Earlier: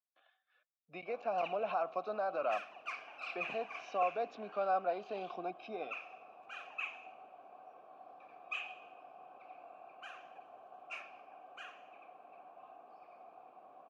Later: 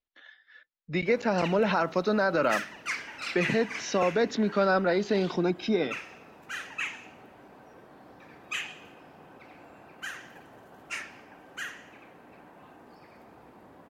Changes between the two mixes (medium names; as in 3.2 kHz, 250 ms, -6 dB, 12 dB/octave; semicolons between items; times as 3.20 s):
background -4.5 dB; master: remove vowel filter a